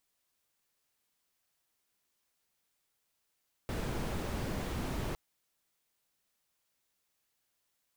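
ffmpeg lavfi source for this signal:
ffmpeg -f lavfi -i "anoisesrc=color=brown:amplitude=0.0785:duration=1.46:sample_rate=44100:seed=1" out.wav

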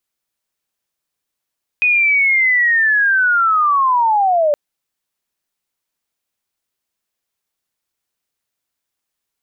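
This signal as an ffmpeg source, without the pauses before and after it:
ffmpeg -f lavfi -i "aevalsrc='pow(10,(-10.5-0.5*t/2.72)/20)*sin(2*PI*(2500*t-1930*t*t/(2*2.72)))':duration=2.72:sample_rate=44100" out.wav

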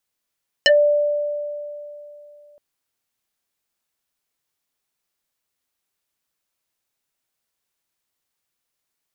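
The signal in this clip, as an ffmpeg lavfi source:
ffmpeg -f lavfi -i "aevalsrc='0.355*pow(10,-3*t/2.96)*sin(2*PI*588*t+5*pow(10,-3*t/0.12)*sin(2*PI*2.03*588*t))':duration=1.92:sample_rate=44100" out.wav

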